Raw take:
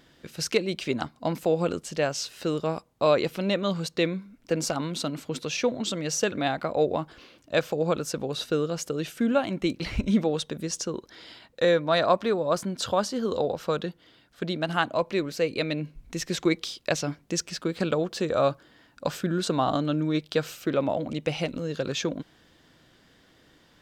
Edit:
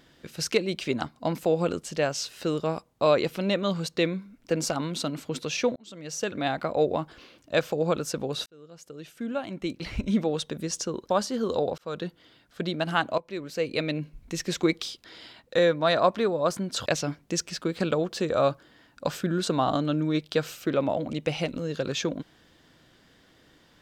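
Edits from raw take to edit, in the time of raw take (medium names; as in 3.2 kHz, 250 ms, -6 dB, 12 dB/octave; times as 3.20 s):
5.76–6.56 s: fade in
8.46–10.57 s: fade in
11.10–12.92 s: move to 16.86 s
13.60–13.89 s: fade in
15.00–15.60 s: fade in, from -16.5 dB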